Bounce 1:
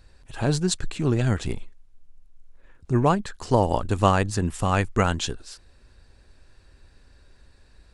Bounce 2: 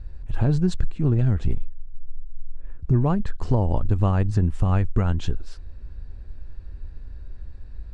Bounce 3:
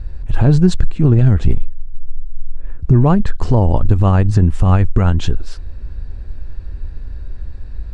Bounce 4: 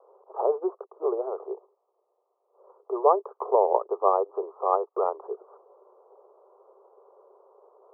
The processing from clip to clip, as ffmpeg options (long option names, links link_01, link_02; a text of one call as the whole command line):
ffmpeg -i in.wav -af "aemphasis=mode=reproduction:type=riaa,acompressor=threshold=-16dB:ratio=6" out.wav
ffmpeg -i in.wav -af "alimiter=level_in=11dB:limit=-1dB:release=50:level=0:latency=1,volume=-1dB" out.wav
ffmpeg -i in.wav -af "areverse,acompressor=mode=upward:threshold=-20dB:ratio=2.5,areverse,asuperpass=centerf=690:order=20:qfactor=0.82" out.wav